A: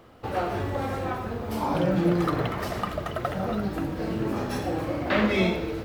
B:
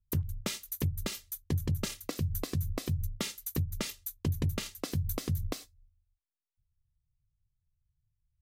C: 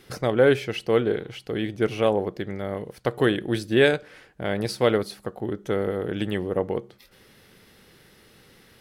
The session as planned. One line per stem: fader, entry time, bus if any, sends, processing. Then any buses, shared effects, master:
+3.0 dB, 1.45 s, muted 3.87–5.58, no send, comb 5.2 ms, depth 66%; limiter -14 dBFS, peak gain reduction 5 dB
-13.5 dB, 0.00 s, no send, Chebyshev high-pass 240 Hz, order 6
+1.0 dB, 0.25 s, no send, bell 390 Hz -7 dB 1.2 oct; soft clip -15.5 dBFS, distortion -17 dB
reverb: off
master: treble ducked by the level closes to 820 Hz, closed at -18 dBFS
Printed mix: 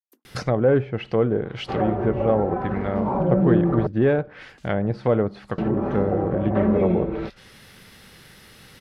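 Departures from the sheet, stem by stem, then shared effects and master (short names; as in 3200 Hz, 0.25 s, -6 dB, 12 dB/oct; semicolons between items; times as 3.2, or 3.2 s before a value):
stem B -13.5 dB -> -20.5 dB; stem C +1.0 dB -> +7.5 dB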